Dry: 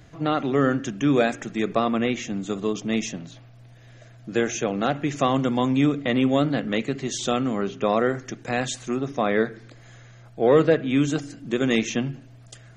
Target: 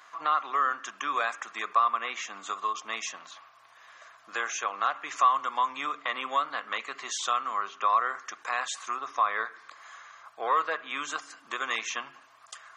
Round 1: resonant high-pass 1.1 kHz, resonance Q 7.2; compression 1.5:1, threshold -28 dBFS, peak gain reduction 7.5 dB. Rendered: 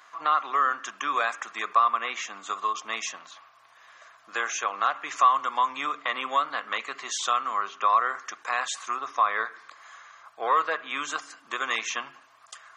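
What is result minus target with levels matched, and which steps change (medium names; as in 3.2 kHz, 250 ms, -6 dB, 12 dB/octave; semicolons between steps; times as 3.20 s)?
compression: peak gain reduction -2.5 dB
change: compression 1.5:1, threshold -36 dBFS, peak gain reduction 10.5 dB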